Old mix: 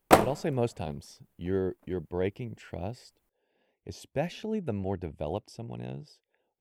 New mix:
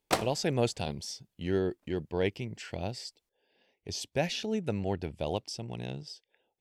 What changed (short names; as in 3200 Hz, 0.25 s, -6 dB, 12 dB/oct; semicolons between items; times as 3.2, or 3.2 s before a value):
background -11.5 dB; master: add bell 5000 Hz +12.5 dB 2 oct